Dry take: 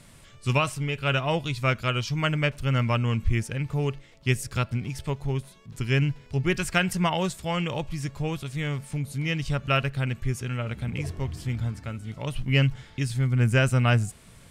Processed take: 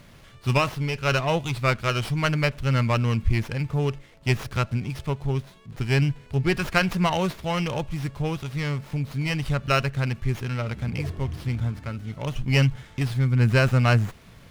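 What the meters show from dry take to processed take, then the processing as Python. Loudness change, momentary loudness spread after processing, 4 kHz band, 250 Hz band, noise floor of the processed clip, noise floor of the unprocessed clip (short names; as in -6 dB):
+2.0 dB, 9 LU, +0.5 dB, +2.0 dB, -50 dBFS, -51 dBFS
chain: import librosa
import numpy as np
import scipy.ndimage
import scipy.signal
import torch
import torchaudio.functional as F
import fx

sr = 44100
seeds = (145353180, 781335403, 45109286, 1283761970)

y = fx.running_max(x, sr, window=5)
y = F.gain(torch.from_numpy(y), 2.5).numpy()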